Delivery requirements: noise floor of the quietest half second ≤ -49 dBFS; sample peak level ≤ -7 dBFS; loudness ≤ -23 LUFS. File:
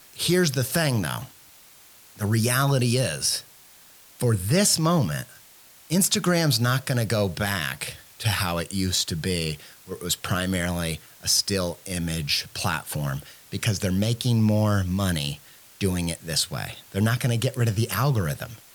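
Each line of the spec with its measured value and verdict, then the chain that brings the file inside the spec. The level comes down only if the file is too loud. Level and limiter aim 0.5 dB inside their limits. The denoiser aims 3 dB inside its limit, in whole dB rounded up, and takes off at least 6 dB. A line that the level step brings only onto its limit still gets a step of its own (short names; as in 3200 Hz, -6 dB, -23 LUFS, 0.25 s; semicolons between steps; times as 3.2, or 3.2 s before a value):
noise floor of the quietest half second -51 dBFS: OK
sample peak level -8.5 dBFS: OK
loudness -24.5 LUFS: OK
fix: none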